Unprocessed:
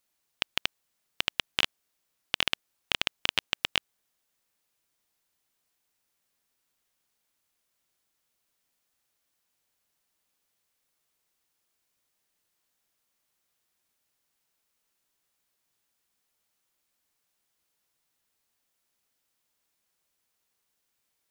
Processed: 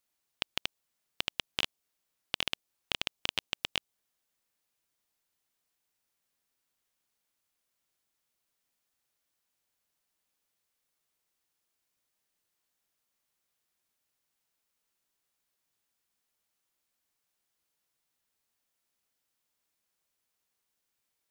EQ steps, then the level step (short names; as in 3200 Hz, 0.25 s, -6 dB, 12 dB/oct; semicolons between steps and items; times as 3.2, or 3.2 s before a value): dynamic EQ 1600 Hz, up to -5 dB, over -45 dBFS, Q 1.2; -4.0 dB